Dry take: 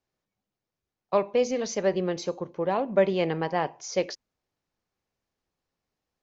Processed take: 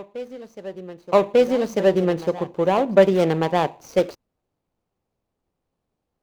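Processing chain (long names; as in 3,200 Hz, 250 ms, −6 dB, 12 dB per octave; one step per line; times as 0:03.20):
running median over 25 samples
backwards echo 1,195 ms −16.5 dB
level +8 dB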